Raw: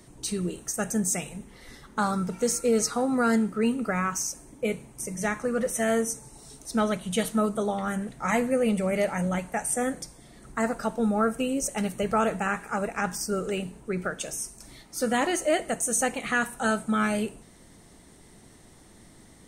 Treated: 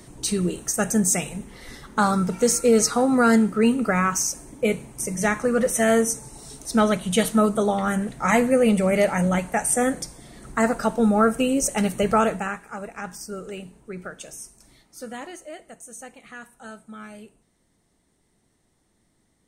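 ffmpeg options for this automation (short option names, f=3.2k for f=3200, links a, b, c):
-af "volume=6dB,afade=t=out:st=12.11:d=0.49:silence=0.266073,afade=t=out:st=14.45:d=1.06:silence=0.334965"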